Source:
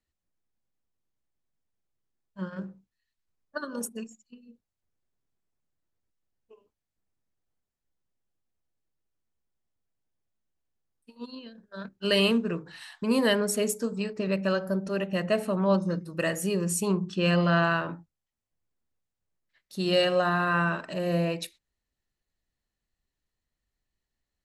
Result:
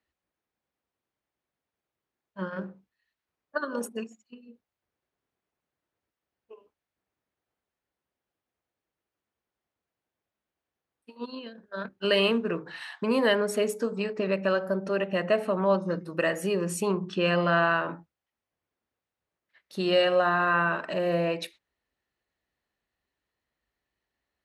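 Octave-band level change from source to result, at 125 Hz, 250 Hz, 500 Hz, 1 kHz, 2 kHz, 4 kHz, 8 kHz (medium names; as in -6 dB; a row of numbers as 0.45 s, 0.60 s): -4.5 dB, -2.5 dB, +2.0 dB, +2.5 dB, +2.0 dB, -1.0 dB, -6.5 dB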